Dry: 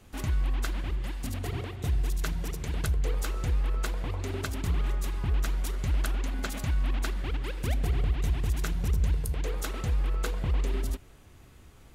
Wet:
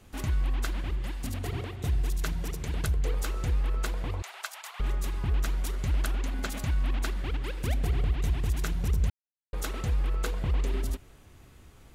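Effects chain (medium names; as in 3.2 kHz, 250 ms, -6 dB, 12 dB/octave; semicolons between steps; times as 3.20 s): 4.22–4.80 s: steep high-pass 690 Hz 36 dB/octave; 9.10–9.53 s: mute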